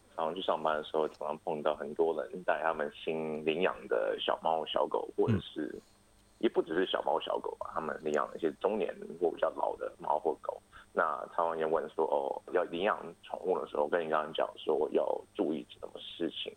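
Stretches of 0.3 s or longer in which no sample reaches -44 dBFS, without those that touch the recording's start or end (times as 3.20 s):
5.79–6.41 s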